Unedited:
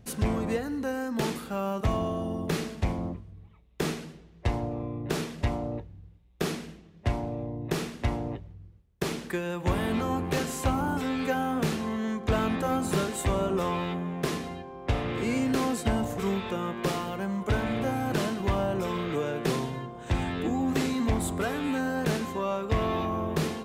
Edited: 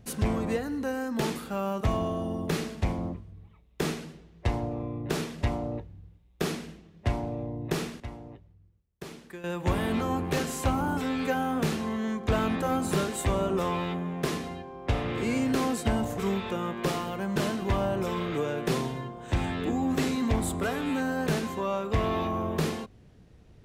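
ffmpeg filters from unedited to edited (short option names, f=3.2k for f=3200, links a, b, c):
-filter_complex "[0:a]asplit=4[a][b][c][d];[a]atrim=end=8.002[e];[b]atrim=start=7.998:end=9.442,asetpts=PTS-STARTPTS,volume=-11.5dB[f];[c]atrim=start=9.438:end=17.362[g];[d]atrim=start=18.138[h];[e][f]acrossfade=d=0.004:c1=hsin:c2=hsin[i];[i][g]acrossfade=d=0.004:c1=hsin:c2=hsin[j];[j][h]acrossfade=d=0.004:c1=hsin:c2=hsin"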